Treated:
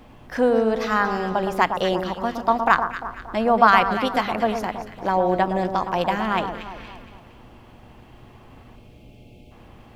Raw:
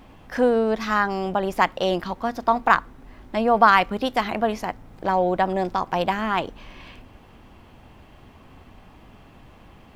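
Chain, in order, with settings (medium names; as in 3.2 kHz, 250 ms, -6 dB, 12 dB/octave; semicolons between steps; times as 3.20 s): spectral selection erased 8.76–9.51 s, 670–2100 Hz; echo whose repeats swap between lows and highs 116 ms, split 1.4 kHz, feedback 66%, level -7 dB; mains buzz 120 Hz, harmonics 7, -54 dBFS -4 dB/octave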